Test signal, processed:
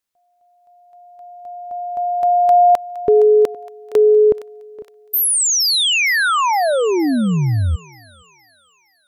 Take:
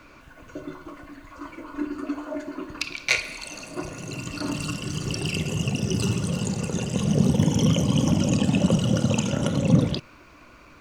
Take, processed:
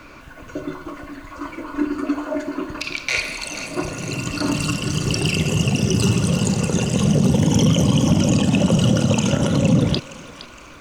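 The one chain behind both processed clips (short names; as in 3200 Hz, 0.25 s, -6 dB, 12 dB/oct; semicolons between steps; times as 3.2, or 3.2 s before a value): limiter -15 dBFS; thinning echo 0.465 s, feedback 52%, high-pass 860 Hz, level -13 dB; gain +7.5 dB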